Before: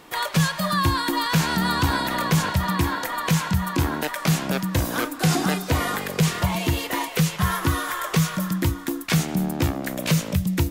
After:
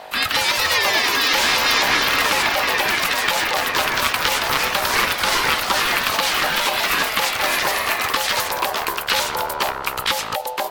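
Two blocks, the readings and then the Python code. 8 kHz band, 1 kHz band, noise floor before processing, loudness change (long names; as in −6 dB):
+5.5 dB, +6.0 dB, −35 dBFS, +5.0 dB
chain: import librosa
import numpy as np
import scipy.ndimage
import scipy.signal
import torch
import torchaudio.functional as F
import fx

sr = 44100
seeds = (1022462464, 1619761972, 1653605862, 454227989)

p1 = fx.add_hum(x, sr, base_hz=50, snr_db=12)
p2 = fx.hpss(p1, sr, part='harmonic', gain_db=-9)
p3 = fx.high_shelf(p2, sr, hz=5300.0, db=6.5)
p4 = p3 * np.sin(2.0 * np.pi * 690.0 * np.arange(len(p3)) / sr)
p5 = fx.over_compress(p4, sr, threshold_db=-30.0, ratio=-1.0)
p6 = p4 + F.gain(torch.from_numpy(p5), 0.0).numpy()
p7 = fx.band_shelf(p6, sr, hz=2200.0, db=9.5, octaves=2.5)
p8 = fx.echo_pitch(p7, sr, ms=187, semitones=2, count=3, db_per_echo=-3.0)
p9 = fx.attack_slew(p8, sr, db_per_s=350.0)
y = F.gain(torch.from_numpy(p9), -3.0).numpy()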